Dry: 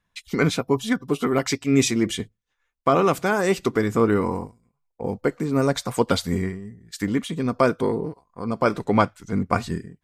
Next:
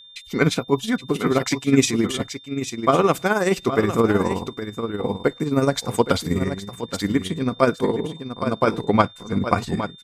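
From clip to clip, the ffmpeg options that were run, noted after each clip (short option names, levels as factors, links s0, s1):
-af "aecho=1:1:819:0.335,tremolo=f=19:d=0.56,aeval=exprs='val(0)+0.00447*sin(2*PI*3600*n/s)':c=same,volume=1.5"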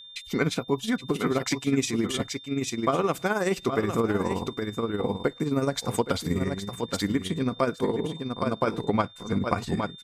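-af "acompressor=threshold=0.0631:ratio=2.5"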